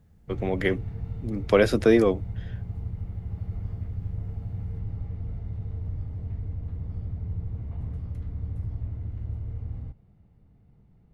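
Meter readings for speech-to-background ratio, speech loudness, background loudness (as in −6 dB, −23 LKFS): 11.5 dB, −23.5 LKFS, −35.0 LKFS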